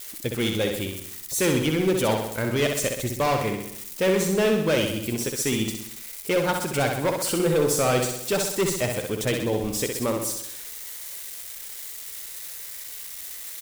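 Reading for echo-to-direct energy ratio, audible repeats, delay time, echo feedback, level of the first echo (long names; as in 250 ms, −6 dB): −3.5 dB, 6, 64 ms, 56%, −5.0 dB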